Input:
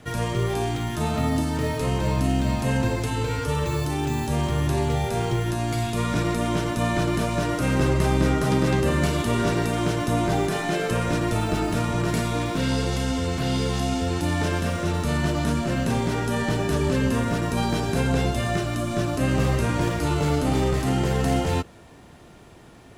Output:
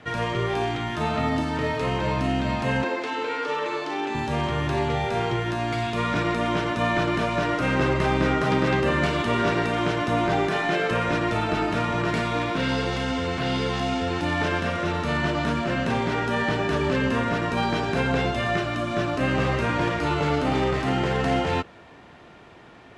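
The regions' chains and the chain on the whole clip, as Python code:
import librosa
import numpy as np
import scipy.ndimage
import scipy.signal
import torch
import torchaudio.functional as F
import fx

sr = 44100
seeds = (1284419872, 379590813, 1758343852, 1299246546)

y = fx.chain(x, sr, fx.highpass(hz=270.0, slope=24),
    fx.resample_linear(factor=3), at=(2.84, 4.15))
y = scipy.signal.sosfilt(scipy.signal.butter(2, 2500.0, 'lowpass', fs=sr, output='sos'), y)
y = fx.tilt_eq(y, sr, slope=2.5)
y = F.gain(torch.from_numpy(y), 3.5).numpy()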